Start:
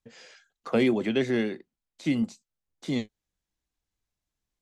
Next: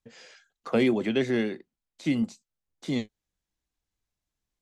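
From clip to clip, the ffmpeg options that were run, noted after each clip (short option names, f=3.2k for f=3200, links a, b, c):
-af anull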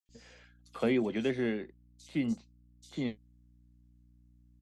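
-filter_complex "[0:a]aeval=exprs='val(0)+0.00178*(sin(2*PI*60*n/s)+sin(2*PI*2*60*n/s)/2+sin(2*PI*3*60*n/s)/3+sin(2*PI*4*60*n/s)/4+sin(2*PI*5*60*n/s)/5)':c=same,acrossover=split=4100[a][b];[a]adelay=90[c];[c][b]amix=inputs=2:normalize=0,volume=-5.5dB"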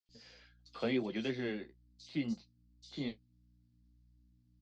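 -af "flanger=delay=5.5:depth=9.4:regen=-35:speed=0.86:shape=sinusoidal,lowpass=f=4.7k:t=q:w=3.3,volume=-1.5dB"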